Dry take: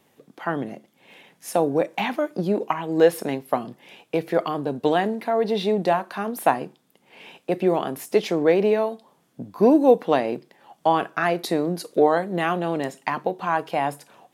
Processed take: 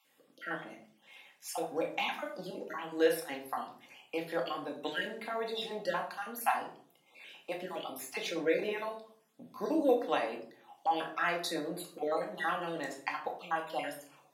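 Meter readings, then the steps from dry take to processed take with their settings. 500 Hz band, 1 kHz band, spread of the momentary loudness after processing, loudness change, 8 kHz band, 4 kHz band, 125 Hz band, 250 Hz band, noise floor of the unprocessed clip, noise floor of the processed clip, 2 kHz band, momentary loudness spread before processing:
-13.5 dB, -11.0 dB, 17 LU, -12.5 dB, -6.0 dB, -5.0 dB, -19.5 dB, -15.5 dB, -64 dBFS, -68 dBFS, -6.5 dB, 11 LU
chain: random spectral dropouts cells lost 32%; HPF 1400 Hz 6 dB/oct; shoebox room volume 560 m³, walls furnished, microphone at 2.2 m; gain -6 dB

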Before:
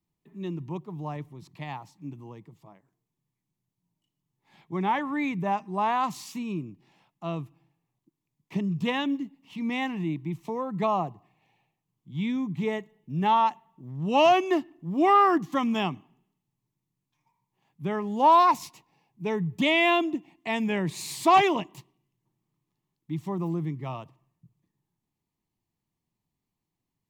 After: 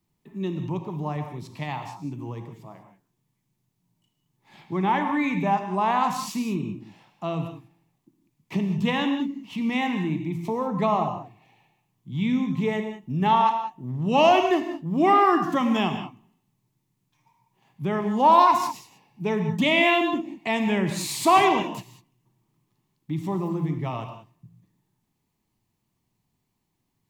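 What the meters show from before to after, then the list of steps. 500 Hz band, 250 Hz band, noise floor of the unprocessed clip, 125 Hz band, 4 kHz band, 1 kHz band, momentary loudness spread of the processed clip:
+3.0 dB, +4.0 dB, -85 dBFS, +4.5 dB, +3.0 dB, +2.5 dB, 17 LU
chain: in parallel at +2.5 dB: compressor, threshold -37 dBFS, peak gain reduction 21.5 dB; on the sum: non-linear reverb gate 0.22 s flat, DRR 5.5 dB

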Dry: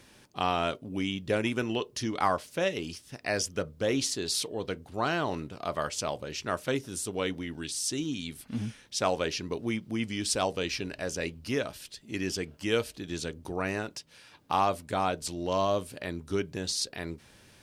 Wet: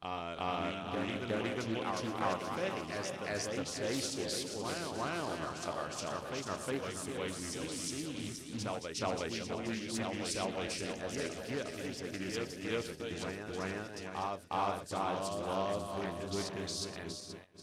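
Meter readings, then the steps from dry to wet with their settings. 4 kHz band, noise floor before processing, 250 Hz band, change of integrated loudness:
-6.5 dB, -58 dBFS, -5.5 dB, -6.0 dB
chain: regenerating reverse delay 0.239 s, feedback 71%, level -6.5 dB; gate -38 dBFS, range -17 dB; on a send: reverse echo 0.361 s -3.5 dB; on the sum: Doppler distortion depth 0.31 ms; gain -9 dB

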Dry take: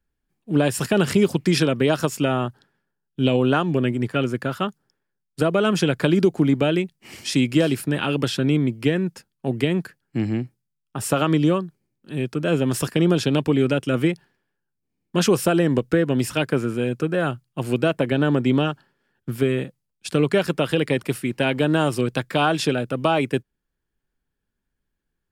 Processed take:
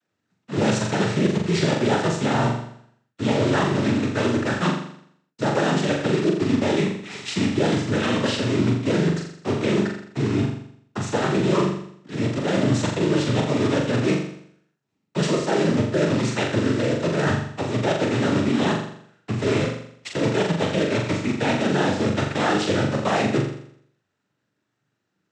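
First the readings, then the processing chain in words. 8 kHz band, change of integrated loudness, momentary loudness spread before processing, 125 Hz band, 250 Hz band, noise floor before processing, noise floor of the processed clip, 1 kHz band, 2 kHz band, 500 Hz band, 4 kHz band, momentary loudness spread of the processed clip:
-1.5 dB, -0.5 dB, 10 LU, 0.0 dB, -1.0 dB, -79 dBFS, -76 dBFS, +1.0 dB, +0.5 dB, -1.0 dB, -0.5 dB, 7 LU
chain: block floating point 3-bit; noise vocoder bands 12; reverse; compressor 4:1, threshold -28 dBFS, peak gain reduction 15 dB; reverse; high shelf 5300 Hz -8.5 dB; flutter echo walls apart 7.2 m, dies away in 0.65 s; gain +7 dB

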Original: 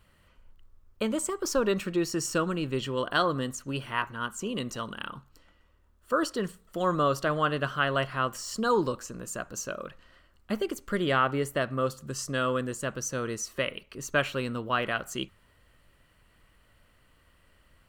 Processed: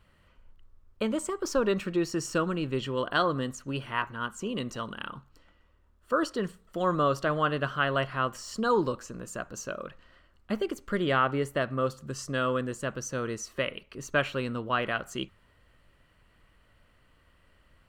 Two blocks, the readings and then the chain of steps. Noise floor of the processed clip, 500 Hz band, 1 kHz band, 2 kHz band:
-64 dBFS, 0.0 dB, 0.0 dB, -0.5 dB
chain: high shelf 6700 Hz -9.5 dB

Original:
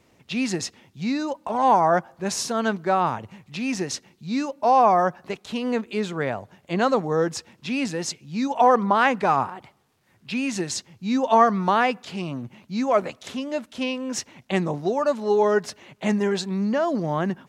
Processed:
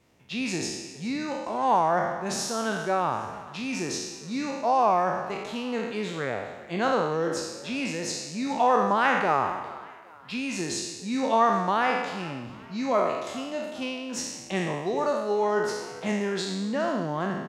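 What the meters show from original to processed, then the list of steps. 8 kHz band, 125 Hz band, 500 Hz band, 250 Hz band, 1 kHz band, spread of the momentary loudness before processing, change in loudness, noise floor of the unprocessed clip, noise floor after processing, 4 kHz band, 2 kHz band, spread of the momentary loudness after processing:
-1.5 dB, -5.0 dB, -4.0 dB, -5.0 dB, -3.5 dB, 13 LU, -4.0 dB, -62 dBFS, -44 dBFS, -1.5 dB, -1.5 dB, 11 LU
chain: spectral trails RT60 1.09 s; frequency-shifting echo 0.408 s, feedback 40%, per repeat +75 Hz, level -19 dB; gain -6.5 dB

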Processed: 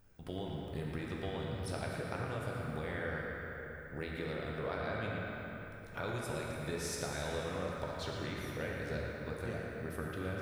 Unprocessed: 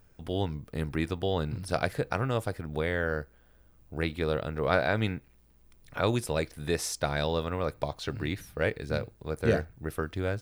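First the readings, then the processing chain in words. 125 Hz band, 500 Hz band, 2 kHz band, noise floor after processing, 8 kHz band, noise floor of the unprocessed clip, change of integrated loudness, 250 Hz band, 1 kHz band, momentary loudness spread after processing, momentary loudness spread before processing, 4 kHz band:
-8.0 dB, -9.5 dB, -7.0 dB, -48 dBFS, -6.5 dB, -60 dBFS, -9.0 dB, -8.0 dB, -8.5 dB, 5 LU, 8 LU, -8.5 dB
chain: compressor, threshold -32 dBFS, peak gain reduction 12.5 dB; narrowing echo 0.114 s, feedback 77%, band-pass 1800 Hz, level -5 dB; plate-style reverb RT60 3.6 s, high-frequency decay 0.6×, DRR -1.5 dB; gain -6 dB

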